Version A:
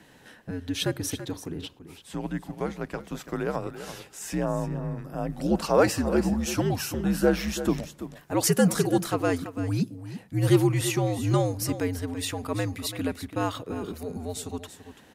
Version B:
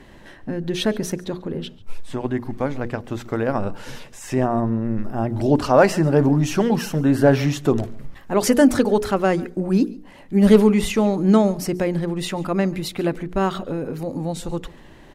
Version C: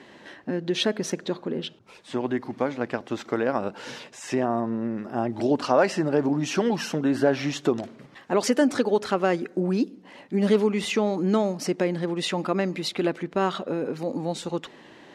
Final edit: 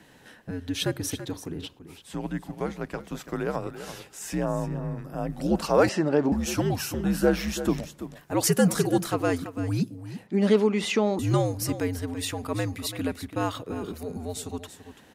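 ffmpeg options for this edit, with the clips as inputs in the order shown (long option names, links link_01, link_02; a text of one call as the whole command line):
ffmpeg -i take0.wav -i take1.wav -i take2.wav -filter_complex "[2:a]asplit=2[link_01][link_02];[0:a]asplit=3[link_03][link_04][link_05];[link_03]atrim=end=5.892[link_06];[link_01]atrim=start=5.888:end=6.322[link_07];[link_04]atrim=start=6.318:end=10.272[link_08];[link_02]atrim=start=10.268:end=11.192[link_09];[link_05]atrim=start=11.188[link_10];[link_06][link_07]acrossfade=duration=0.004:curve1=hsin:curve2=hsin[link_11];[link_11][link_08]acrossfade=duration=0.004:curve1=hsin:curve2=hsin[link_12];[link_12][link_09]acrossfade=duration=0.004:curve1=hsin:curve2=hsin[link_13];[link_13][link_10]acrossfade=duration=0.004:curve1=hsin:curve2=hsin" out.wav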